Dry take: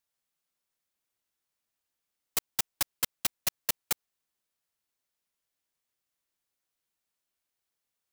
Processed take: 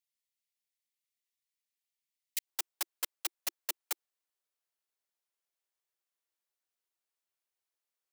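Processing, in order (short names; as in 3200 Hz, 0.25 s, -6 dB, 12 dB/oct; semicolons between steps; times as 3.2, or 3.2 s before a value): elliptic high-pass 1900 Hz, from 2.45 s 340 Hz; gain -5 dB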